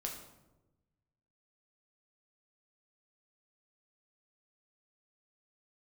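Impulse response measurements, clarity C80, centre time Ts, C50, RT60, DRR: 8.5 dB, 31 ms, 6.0 dB, 1.0 s, 0.0 dB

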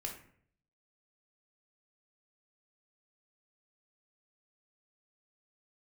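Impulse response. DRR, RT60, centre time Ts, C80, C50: 1.0 dB, 0.60 s, 24 ms, 11.0 dB, 7.0 dB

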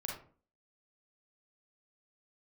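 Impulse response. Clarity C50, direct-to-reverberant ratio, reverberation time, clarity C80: 2.5 dB, −2.0 dB, 0.45 s, 9.5 dB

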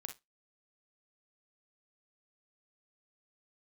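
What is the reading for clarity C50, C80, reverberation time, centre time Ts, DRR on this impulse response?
9.5 dB, 25.0 dB, non-exponential decay, 12 ms, 5.5 dB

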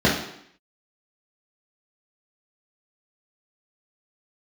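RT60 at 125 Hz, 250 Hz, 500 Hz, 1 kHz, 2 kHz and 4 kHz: 0.60, 0.75, 0.70, 0.70, 0.75, 0.70 seconds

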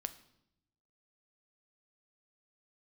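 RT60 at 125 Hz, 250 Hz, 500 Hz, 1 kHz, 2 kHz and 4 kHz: 1.3, 1.1, 0.85, 0.75, 0.65, 0.70 seconds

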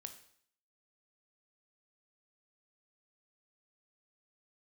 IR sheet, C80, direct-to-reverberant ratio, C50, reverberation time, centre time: 14.0 dB, 7.0 dB, 10.5 dB, 0.60 s, 11 ms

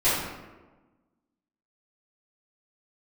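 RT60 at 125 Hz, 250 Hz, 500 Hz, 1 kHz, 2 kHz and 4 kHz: 1.3, 1.6, 1.3, 1.2, 0.95, 0.70 seconds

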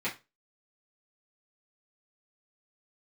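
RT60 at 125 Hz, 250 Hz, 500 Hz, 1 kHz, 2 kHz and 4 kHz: 0.30, 0.25, 0.25, 0.25, 0.25, 0.25 seconds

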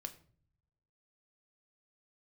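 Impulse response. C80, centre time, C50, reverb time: 18.5 dB, 6 ms, 15.5 dB, 0.50 s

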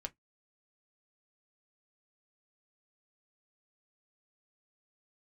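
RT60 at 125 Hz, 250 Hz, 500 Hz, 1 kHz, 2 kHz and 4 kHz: 0.15, 0.15, 0.15, 0.10, 0.10, 0.10 seconds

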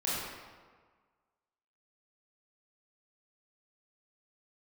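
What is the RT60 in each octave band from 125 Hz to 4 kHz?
1.5, 1.5, 1.5, 1.6, 1.3, 1.0 seconds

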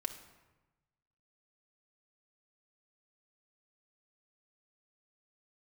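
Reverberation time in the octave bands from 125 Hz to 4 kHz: 1.6, 1.2, 1.1, 1.1, 1.0, 0.75 seconds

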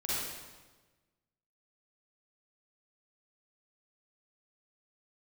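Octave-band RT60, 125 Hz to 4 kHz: 1.6, 1.4, 1.3, 1.2, 1.1, 1.1 seconds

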